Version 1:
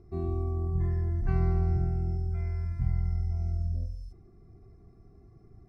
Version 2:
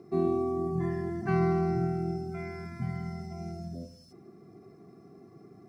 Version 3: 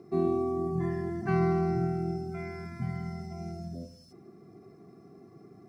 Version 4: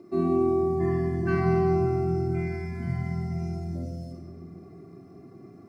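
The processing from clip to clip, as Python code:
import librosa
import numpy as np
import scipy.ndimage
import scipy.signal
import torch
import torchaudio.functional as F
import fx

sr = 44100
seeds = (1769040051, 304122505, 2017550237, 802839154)

y1 = scipy.signal.sosfilt(scipy.signal.butter(4, 170.0, 'highpass', fs=sr, output='sos'), x)
y1 = y1 * librosa.db_to_amplitude(9.0)
y2 = y1
y3 = fx.room_shoebox(y2, sr, seeds[0], volume_m3=2900.0, walls='mixed', distance_m=2.6)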